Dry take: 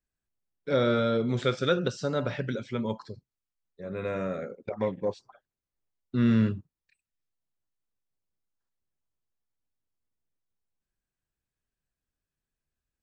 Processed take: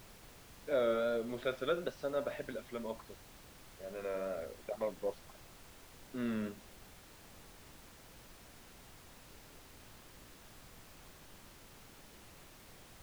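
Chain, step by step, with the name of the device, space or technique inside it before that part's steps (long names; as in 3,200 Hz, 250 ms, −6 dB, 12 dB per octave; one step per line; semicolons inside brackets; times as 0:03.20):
horn gramophone (band-pass filter 280–3,400 Hz; parametric band 630 Hz +9.5 dB 0.25 octaves; tape wow and flutter; pink noise bed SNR 14 dB)
level −9 dB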